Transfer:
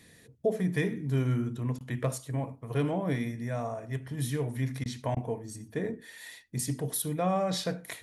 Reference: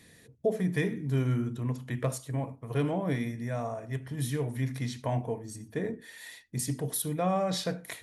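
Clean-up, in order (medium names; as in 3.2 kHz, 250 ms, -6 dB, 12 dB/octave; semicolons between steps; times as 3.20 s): interpolate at 1.79/4.84/5.15 s, 15 ms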